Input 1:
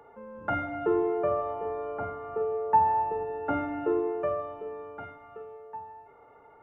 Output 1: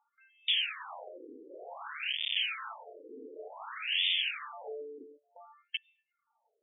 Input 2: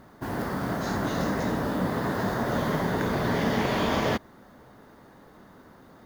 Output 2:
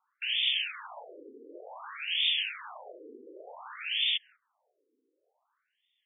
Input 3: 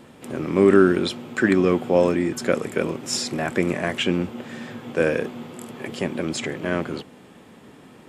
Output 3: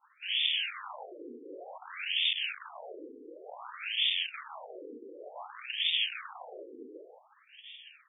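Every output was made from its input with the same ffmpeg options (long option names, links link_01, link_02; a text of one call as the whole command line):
ffmpeg -i in.wav -filter_complex "[0:a]agate=range=-20dB:threshold=-46dB:ratio=16:detection=peak,lowpass=3800,aemphasis=mode=production:type=50kf,acrossover=split=460[link_01][link_02];[link_02]alimiter=limit=-18dB:level=0:latency=1:release=157[link_03];[link_01][link_03]amix=inputs=2:normalize=0,acompressor=threshold=-25dB:ratio=8,aresample=11025,aeval=exprs='(mod(39.8*val(0)+1,2)-1)/39.8':channel_layout=same,aresample=44100,aexciter=amount=14.1:drive=3.2:freq=2900,afftfilt=real='re*between(b*sr/1024,350*pow(2600/350,0.5+0.5*sin(2*PI*0.55*pts/sr))/1.41,350*pow(2600/350,0.5+0.5*sin(2*PI*0.55*pts/sr))*1.41)':imag='im*between(b*sr/1024,350*pow(2600/350,0.5+0.5*sin(2*PI*0.55*pts/sr))/1.41,350*pow(2600/350,0.5+0.5*sin(2*PI*0.55*pts/sr))*1.41)':win_size=1024:overlap=0.75" out.wav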